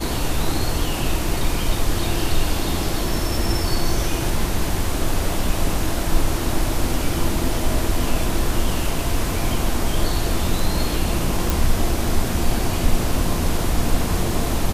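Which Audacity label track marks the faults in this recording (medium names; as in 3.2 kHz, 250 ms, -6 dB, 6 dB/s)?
11.500000	11.500000	pop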